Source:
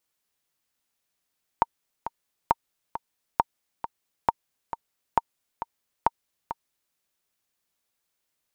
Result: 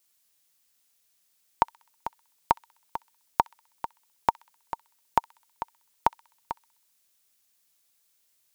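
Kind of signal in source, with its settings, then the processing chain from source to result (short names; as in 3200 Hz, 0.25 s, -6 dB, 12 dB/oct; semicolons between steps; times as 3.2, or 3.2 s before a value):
metronome 135 bpm, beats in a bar 2, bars 6, 924 Hz, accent 11.5 dB -5.5 dBFS
high shelf 2900 Hz +11.5 dB; thin delay 64 ms, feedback 52%, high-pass 1900 Hz, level -21 dB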